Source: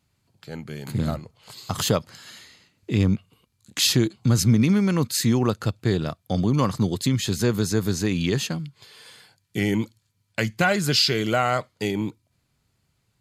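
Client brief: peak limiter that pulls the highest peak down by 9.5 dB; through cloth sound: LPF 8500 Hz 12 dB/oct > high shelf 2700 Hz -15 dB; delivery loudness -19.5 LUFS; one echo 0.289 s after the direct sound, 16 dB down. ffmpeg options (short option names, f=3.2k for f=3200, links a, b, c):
-af "alimiter=limit=-15.5dB:level=0:latency=1,lowpass=8.5k,highshelf=f=2.7k:g=-15,aecho=1:1:289:0.158,volume=8.5dB"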